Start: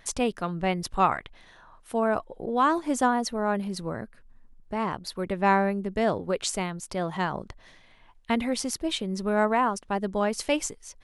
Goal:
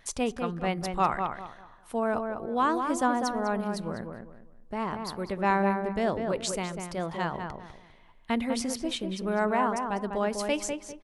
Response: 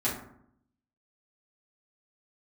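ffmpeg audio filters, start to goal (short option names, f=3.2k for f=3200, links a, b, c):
-filter_complex "[0:a]asplit=2[a][b];[b]adelay=199,lowpass=f=2k:p=1,volume=-5dB,asplit=2[c][d];[d]adelay=199,lowpass=f=2k:p=1,volume=0.29,asplit=2[e][f];[f]adelay=199,lowpass=f=2k:p=1,volume=0.29,asplit=2[g][h];[h]adelay=199,lowpass=f=2k:p=1,volume=0.29[i];[a][c][e][g][i]amix=inputs=5:normalize=0,asplit=2[j][k];[1:a]atrim=start_sample=2205[l];[k][l]afir=irnorm=-1:irlink=0,volume=-29.5dB[m];[j][m]amix=inputs=2:normalize=0,volume=-3.5dB"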